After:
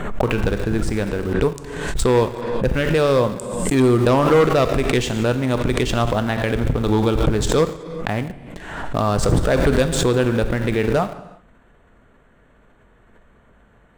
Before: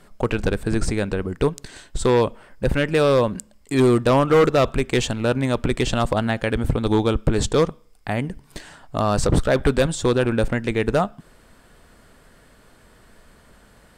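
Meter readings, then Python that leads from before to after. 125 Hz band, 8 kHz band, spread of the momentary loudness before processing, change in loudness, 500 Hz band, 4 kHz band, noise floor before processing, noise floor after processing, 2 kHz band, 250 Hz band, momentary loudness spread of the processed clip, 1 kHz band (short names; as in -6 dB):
+2.5 dB, +2.5 dB, 10 LU, +1.5 dB, +1.5 dB, +1.5 dB, -53 dBFS, -54 dBFS, +1.5 dB, +2.0 dB, 10 LU, +1.5 dB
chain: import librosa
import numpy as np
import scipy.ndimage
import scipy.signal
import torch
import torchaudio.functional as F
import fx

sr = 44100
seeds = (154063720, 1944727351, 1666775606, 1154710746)

p1 = fx.wiener(x, sr, points=9)
p2 = fx.rev_gated(p1, sr, seeds[0], gate_ms=400, shape='falling', drr_db=9.0)
p3 = np.where(np.abs(p2) >= 10.0 ** (-24.0 / 20.0), p2, 0.0)
p4 = p2 + (p3 * 10.0 ** (-9.0 / 20.0))
p5 = fx.pre_swell(p4, sr, db_per_s=44.0)
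y = p5 * 10.0 ** (-2.5 / 20.0)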